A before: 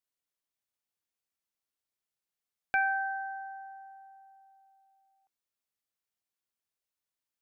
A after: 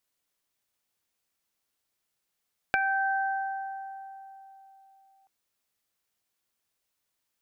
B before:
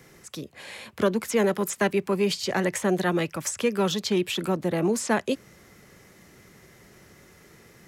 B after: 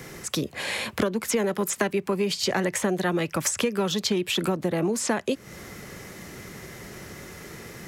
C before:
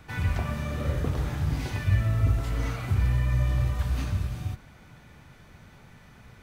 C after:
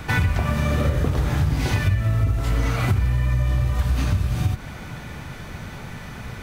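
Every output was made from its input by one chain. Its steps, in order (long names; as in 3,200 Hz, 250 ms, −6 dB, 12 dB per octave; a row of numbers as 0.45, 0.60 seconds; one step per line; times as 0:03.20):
downward compressor 10 to 1, threshold −33 dBFS
normalise the peak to −9 dBFS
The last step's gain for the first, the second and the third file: +9.5, +11.5, +16.0 decibels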